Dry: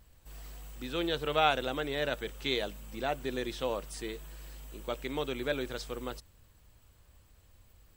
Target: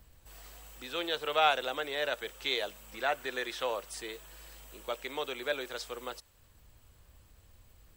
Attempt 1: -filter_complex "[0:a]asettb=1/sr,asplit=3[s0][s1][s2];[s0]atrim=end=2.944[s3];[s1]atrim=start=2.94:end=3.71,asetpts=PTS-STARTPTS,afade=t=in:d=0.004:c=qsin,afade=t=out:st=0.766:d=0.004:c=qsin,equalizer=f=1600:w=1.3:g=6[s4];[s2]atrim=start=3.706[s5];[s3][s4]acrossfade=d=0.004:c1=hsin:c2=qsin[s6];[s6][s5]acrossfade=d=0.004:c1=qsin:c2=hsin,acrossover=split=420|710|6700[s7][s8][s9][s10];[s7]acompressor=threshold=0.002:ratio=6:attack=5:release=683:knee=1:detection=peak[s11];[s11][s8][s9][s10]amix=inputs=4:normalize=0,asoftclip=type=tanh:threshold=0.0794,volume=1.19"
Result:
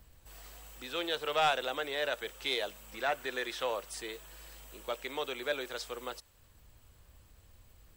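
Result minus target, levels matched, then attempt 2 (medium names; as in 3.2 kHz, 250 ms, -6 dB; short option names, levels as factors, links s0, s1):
saturation: distortion +18 dB
-filter_complex "[0:a]asettb=1/sr,asplit=3[s0][s1][s2];[s0]atrim=end=2.944[s3];[s1]atrim=start=2.94:end=3.71,asetpts=PTS-STARTPTS,afade=t=in:d=0.004:c=qsin,afade=t=out:st=0.766:d=0.004:c=qsin,equalizer=f=1600:w=1.3:g=6[s4];[s2]atrim=start=3.706[s5];[s3][s4]acrossfade=d=0.004:c1=hsin:c2=qsin[s6];[s6][s5]acrossfade=d=0.004:c1=qsin:c2=hsin,acrossover=split=420|710|6700[s7][s8][s9][s10];[s7]acompressor=threshold=0.002:ratio=6:attack=5:release=683:knee=1:detection=peak[s11];[s11][s8][s9][s10]amix=inputs=4:normalize=0,asoftclip=type=tanh:threshold=0.299,volume=1.19"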